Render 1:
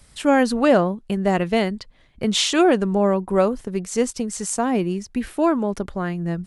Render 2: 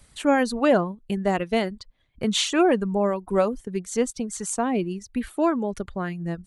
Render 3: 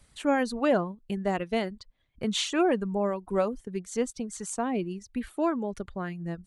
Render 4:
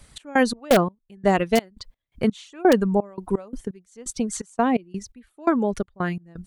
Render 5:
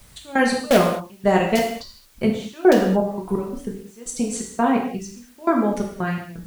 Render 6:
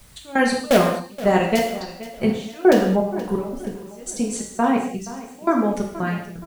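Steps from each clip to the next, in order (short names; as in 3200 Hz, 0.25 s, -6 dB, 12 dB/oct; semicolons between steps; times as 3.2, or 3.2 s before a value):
reverb removal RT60 0.84 s; notch 5200 Hz, Q 10; gain -2.5 dB
high shelf 9800 Hz -4.5 dB; gain -5 dB
step gate "x.x.x..x" 85 bpm -24 dB; in parallel at -4 dB: wrapped overs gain 15 dB; on the sum: gain +5 dB
non-linear reverb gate 0.25 s falling, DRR -1 dB; added noise white -55 dBFS; gain -1 dB
feedback echo 0.475 s, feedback 44%, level -16 dB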